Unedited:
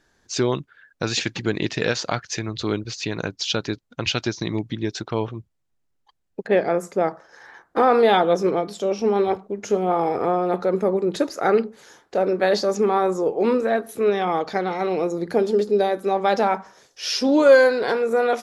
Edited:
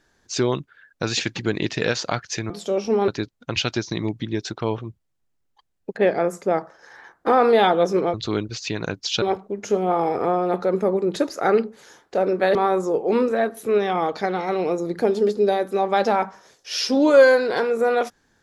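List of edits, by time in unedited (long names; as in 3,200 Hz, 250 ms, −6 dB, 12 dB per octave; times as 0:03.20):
0:02.50–0:03.58: swap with 0:08.64–0:09.22
0:12.55–0:12.87: remove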